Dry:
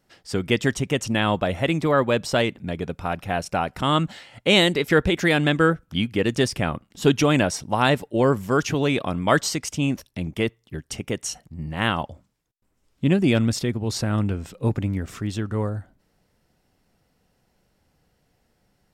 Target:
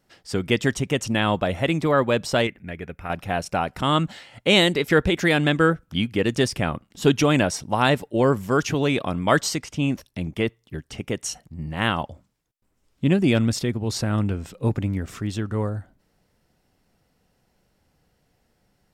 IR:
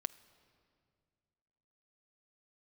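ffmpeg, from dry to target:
-filter_complex "[0:a]asettb=1/sr,asplit=3[s0][s1][s2];[s0]atrim=end=2.474[s3];[s1]atrim=start=2.47:end=3.1,asetpts=PTS-STARTPTS,afade=t=in:d=0.004:c=qsin,afade=t=out:st=0.626:d=0.004:c=qsin,equalizer=f=125:t=o:w=1:g=-7,equalizer=f=250:t=o:w=1:g=-5,equalizer=f=500:t=o:w=1:g=-4,equalizer=f=1000:t=o:w=1:g=-8,equalizer=f=2000:t=o:w=1:g=8,equalizer=f=4000:t=o:w=1:g=-12,equalizer=f=8000:t=o:w=1:g=-8[s4];[s2]atrim=start=3.096[s5];[s3][s4]acrossfade=d=0.004:c1=hsin:c2=qsin[s6];[s6][s5]acrossfade=d=0.004:c1=qsin:c2=hsin,asettb=1/sr,asplit=3[s7][s8][s9];[s7]atrim=end=9.584[s10];[s8]atrim=start=9.58:end=11.16,asetpts=PTS-STARTPTS,afade=t=in:d=0.004:c=qsin,afade=t=out:st=1.576:d=0.004:c=qsin,acrossover=split=4000[s11][s12];[s12]acompressor=threshold=0.00708:ratio=4:attack=1:release=60[s13];[s11][s13]amix=inputs=2:normalize=0[s14];[s9]atrim=start=11.156[s15];[s10][s14]acrossfade=d=0.004:c1=hsin:c2=qsin[s16];[s16][s15]acrossfade=d=0.004:c1=qsin:c2=hsin"

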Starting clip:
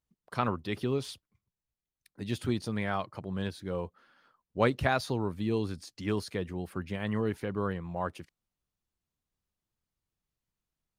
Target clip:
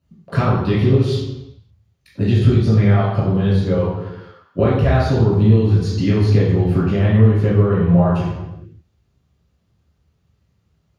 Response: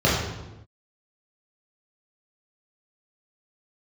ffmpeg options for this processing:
-filter_complex "[0:a]asettb=1/sr,asplit=3[s0][s1][s2];[s0]atrim=end=3.744[s3];[s1]atrim=start=3.74:end=4.59,asetpts=PTS-STARTPTS,afade=t=in:d=0.004:c=qsin,afade=t=out:st=0.846:d=0.004:c=qsin,highpass=f=710:p=1[s4];[s2]atrim=start=4.586[s5];[s3][s4]acrossfade=d=0.004:c1=hsin:c2=qsin[s6];[s6][s5]acrossfade=d=0.004:c1=qsin:c2=hsin,acompressor=threshold=0.0141:ratio=6[s7];[1:a]atrim=start_sample=2205[s8];[s7][s8]afir=irnorm=-1:irlink=0"

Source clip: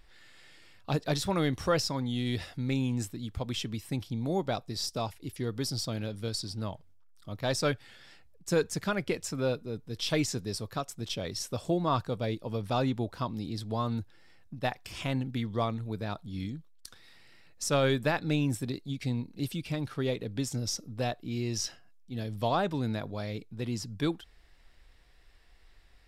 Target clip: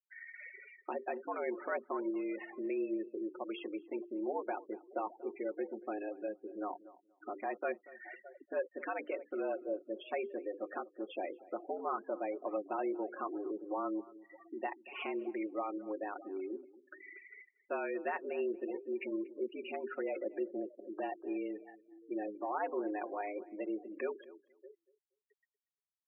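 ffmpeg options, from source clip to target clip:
-filter_complex "[0:a]acompressor=threshold=0.00282:ratio=2.5,asplit=2[s0][s1];[s1]aecho=0:1:613|1226:0.1|0.024[s2];[s0][s2]amix=inputs=2:normalize=0,alimiter=level_in=5.62:limit=0.0631:level=0:latency=1:release=37,volume=0.178,highpass=f=210:t=q:w=0.5412,highpass=f=210:t=q:w=1.307,lowpass=f=2600:t=q:w=0.5176,lowpass=f=2600:t=q:w=0.7071,lowpass=f=2600:t=q:w=1.932,afreqshift=95,bandreject=f=50:t=h:w=6,bandreject=f=100:t=h:w=6,bandreject=f=150:t=h:w=6,bandreject=f=200:t=h:w=6,bandreject=f=250:t=h:w=6,bandreject=f=300:t=h:w=6,bandreject=f=350:t=h:w=6,bandreject=f=400:t=h:w=6,bandreject=f=450:t=h:w=6,bandreject=f=500:t=h:w=6,afftfilt=real='re*gte(hypot(re,im),0.00251)':imag='im*gte(hypot(re,im),0.00251)':win_size=1024:overlap=0.75,aecho=1:1:5.5:0.47,asplit=2[s3][s4];[s4]adelay=236,lowpass=f=1300:p=1,volume=0.119,asplit=2[s5][s6];[s6]adelay=236,lowpass=f=1300:p=1,volume=0.19[s7];[s5][s7]amix=inputs=2:normalize=0[s8];[s3][s8]amix=inputs=2:normalize=0,volume=3.98"

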